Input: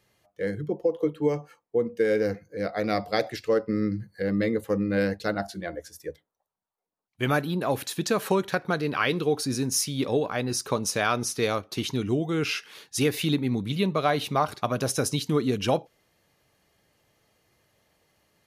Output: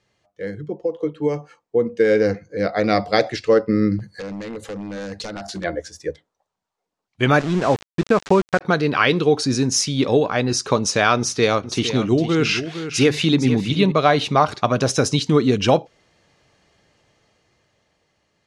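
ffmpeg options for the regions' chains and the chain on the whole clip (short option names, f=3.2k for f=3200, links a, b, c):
-filter_complex "[0:a]asettb=1/sr,asplit=3[a][b][c];[a]atrim=end=3.994[d];[b]atrim=start=3.99:end=5.64,asetpts=PTS-STARTPTS,afade=t=in:d=0.004:c=qsin,afade=t=out:st=1.646:d=0.004:c=qsin,highshelf=f=4.1k:g=10.5,acompressor=threshold=-34dB:ratio=8:attack=3.2:release=140:knee=1:detection=peak,aeval=exprs='0.0224*(abs(mod(val(0)/0.0224+3,4)-2)-1)':c=same[e];[c]atrim=start=5.636[f];[d][e]acrossfade=d=0.004:c1=hsin:c2=qsin[g];[g][f]acrossfade=d=0.004:c1=qsin:c2=hsin,asettb=1/sr,asplit=3[h][i][j];[h]atrim=end=7.394[k];[i]atrim=start=7.39:end=8.61,asetpts=PTS-STARTPTS,afade=t=in:d=0.004:c=qsin,afade=t=out:st=1.216:d=0.004:c=qsin,lowpass=2.3k,aeval=exprs='val(0)*gte(abs(val(0)),0.0237)':c=same[l];[j]atrim=start=8.606[m];[k][l]acrossfade=d=0.004:c1=hsin:c2=qsin[n];[n][m]acrossfade=d=0.004:c1=qsin:c2=hsin,asettb=1/sr,asplit=3[o][p][q];[o]atrim=end=11.184[r];[p]atrim=start=11.18:end=13.92,asetpts=PTS-STARTPTS,afade=t=in:d=0.004:c=qsin,afade=t=out:st=2.736:d=0.004:c=qsin,bandreject=f=50:t=h:w=6,bandreject=f=100:t=h:w=6,bandreject=f=150:t=h:w=6,aecho=1:1:459:0.299,atrim=end_sample=120834[s];[q]atrim=start=13.916[t];[r][s]acrossfade=d=0.004:c1=hsin:c2=qsin[u];[u][t]acrossfade=d=0.004:c1=qsin:c2=hsin,dynaudnorm=f=350:g=9:m=11.5dB,lowpass=f=7.6k:w=0.5412,lowpass=f=7.6k:w=1.3066"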